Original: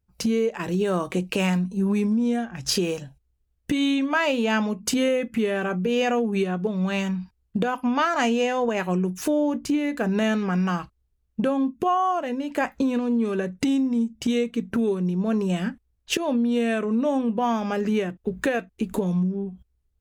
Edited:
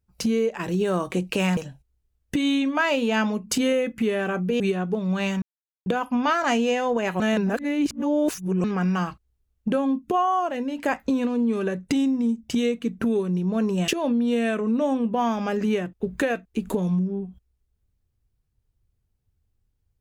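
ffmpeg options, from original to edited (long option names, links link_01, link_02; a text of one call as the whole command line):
ffmpeg -i in.wav -filter_complex "[0:a]asplit=8[link_01][link_02][link_03][link_04][link_05][link_06][link_07][link_08];[link_01]atrim=end=1.572[link_09];[link_02]atrim=start=2.928:end=5.962[link_10];[link_03]atrim=start=6.318:end=7.14,asetpts=PTS-STARTPTS,afade=type=out:start_time=0.818:duration=0.004:curve=hsin[link_11];[link_04]atrim=start=7.14:end=7.58,asetpts=PTS-STARTPTS,volume=0[link_12];[link_05]atrim=start=7.58:end=8.922,asetpts=PTS-STARTPTS,afade=type=in:duration=0.004:curve=hsin[link_13];[link_06]atrim=start=8.918:end=10.362,asetpts=PTS-STARTPTS,areverse[link_14];[link_07]atrim=start=10.358:end=15.602[link_15];[link_08]atrim=start=16.118[link_16];[link_09][link_10]acrossfade=duration=0.004:curve1=hsin:curve2=hsin[link_17];[link_11][link_12][link_13]concat=n=3:v=0:a=1[link_18];[link_17][link_18]acrossfade=duration=0.004:curve1=hsin:curve2=hsin[link_19];[link_19][link_14]acrossfade=duration=0.004:curve1=hsin:curve2=hsin[link_20];[link_20][link_15]acrossfade=duration=0.004:curve1=hsin:curve2=hsin[link_21];[link_21][link_16]acrossfade=duration=0.004:curve1=hsin:curve2=hsin" out.wav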